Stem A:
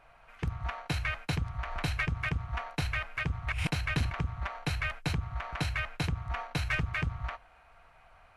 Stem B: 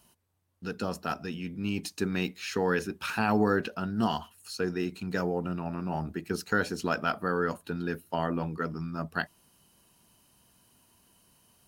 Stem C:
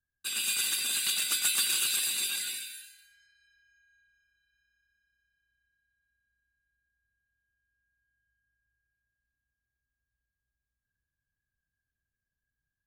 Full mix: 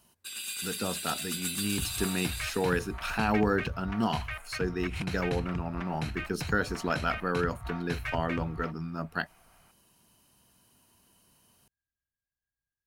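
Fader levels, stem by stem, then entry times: -4.5, -1.0, -7.0 dB; 1.35, 0.00, 0.00 s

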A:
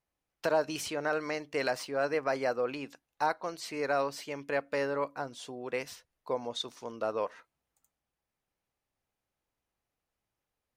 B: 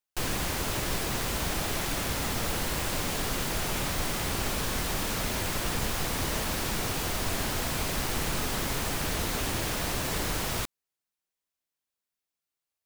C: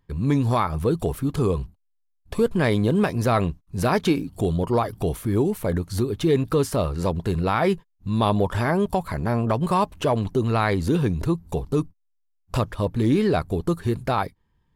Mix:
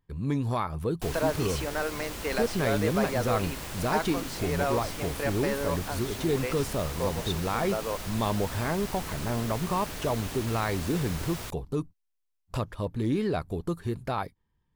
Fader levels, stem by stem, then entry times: 0.0, -7.5, -7.5 dB; 0.70, 0.85, 0.00 s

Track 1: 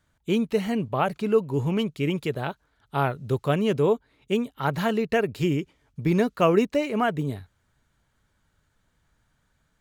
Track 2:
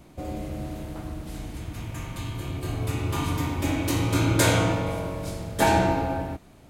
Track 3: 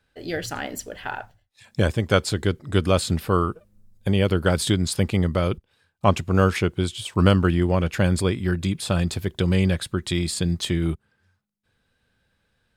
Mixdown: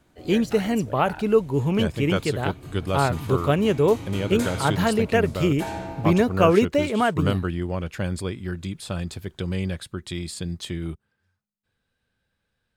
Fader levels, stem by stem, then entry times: +2.5, -11.5, -7.0 dB; 0.00, 0.00, 0.00 s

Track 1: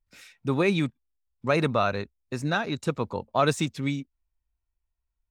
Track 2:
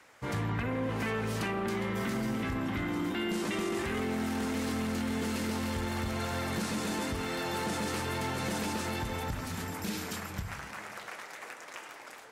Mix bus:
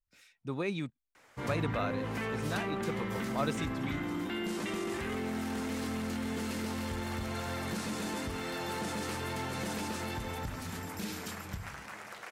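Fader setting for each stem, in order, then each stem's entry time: -11.0, -3.0 dB; 0.00, 1.15 s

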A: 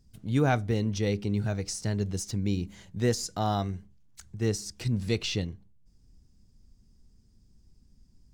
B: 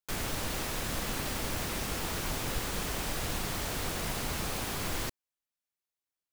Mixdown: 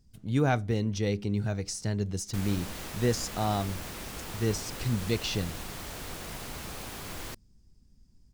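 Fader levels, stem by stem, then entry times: -1.0, -5.5 dB; 0.00, 2.25 s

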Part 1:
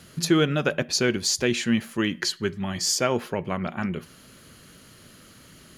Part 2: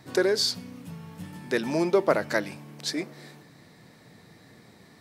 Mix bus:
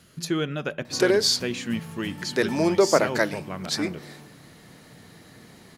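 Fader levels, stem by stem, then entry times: -6.0, +3.0 dB; 0.00, 0.85 s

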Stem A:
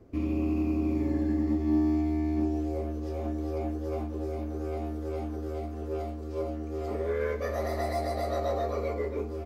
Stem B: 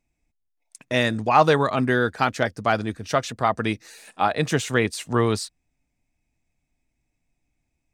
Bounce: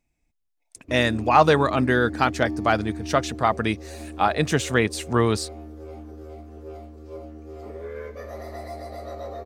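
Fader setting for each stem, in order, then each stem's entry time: -5.5, +0.5 dB; 0.75, 0.00 s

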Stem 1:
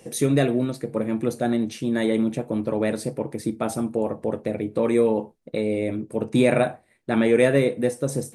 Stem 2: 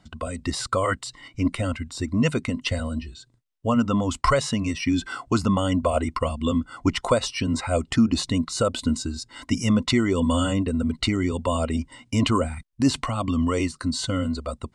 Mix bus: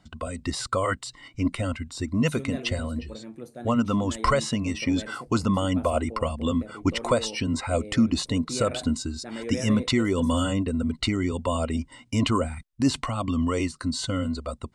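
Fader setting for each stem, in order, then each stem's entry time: -16.0, -2.0 dB; 2.15, 0.00 s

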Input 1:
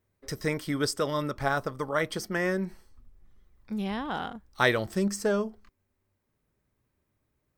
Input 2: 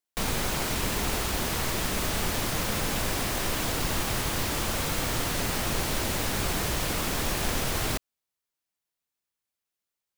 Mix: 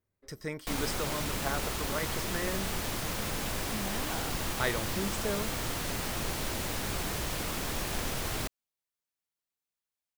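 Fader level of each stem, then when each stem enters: -8.0, -5.5 dB; 0.00, 0.50 s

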